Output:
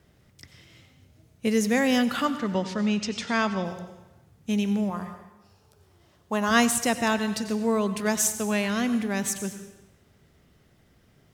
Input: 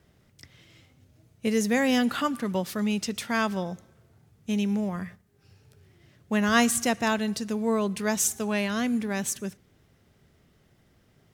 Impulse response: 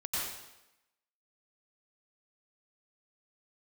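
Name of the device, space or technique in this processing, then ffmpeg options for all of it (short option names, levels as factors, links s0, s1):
compressed reverb return: -filter_complex "[0:a]asettb=1/sr,asplit=3[s0][s1][s2];[s0]atrim=end=2.254[s3];[s1]atrim=start=2.25:end=3.65,asetpts=PTS-STARTPTS,afade=t=in:d=0.004:c=qsin,afade=t=out:st=1.396:d=0.004:c=qsin,lowpass=f=6800:w=0.5412,lowpass=f=6800:w=1.3066[s4];[s2]atrim=start=3.646[s5];[s3][s4]acrossfade=d=0.004:c1=hsin:c2=qsin[s6];[s6][s5]acrossfade=d=0.004:c1=qsin:c2=hsin,asettb=1/sr,asplit=3[s7][s8][s9];[s7]atrim=end=4.904[s10];[s8]atrim=start=4.9:end=6.51,asetpts=PTS-STARTPTS,afade=t=in:d=0.004:c=qsin,afade=t=out:st=1.606:d=0.004:c=qsin,equalizer=f=125:t=o:w=1:g=-9,equalizer=f=250:t=o:w=1:g=-4,equalizer=f=1000:t=o:w=1:g=8,equalizer=f=2000:t=o:w=1:g=-9[s11];[s9]atrim=start=6.506[s12];[s10][s11]acrossfade=d=0.004:c1=hsin:c2=qsin[s13];[s13][s12]acrossfade=d=0.004:c1=qsin:c2=hsin,asplit=2[s14][s15];[1:a]atrim=start_sample=2205[s16];[s15][s16]afir=irnorm=-1:irlink=0,acompressor=threshold=0.0794:ratio=6,volume=0.282[s17];[s14][s17]amix=inputs=2:normalize=0"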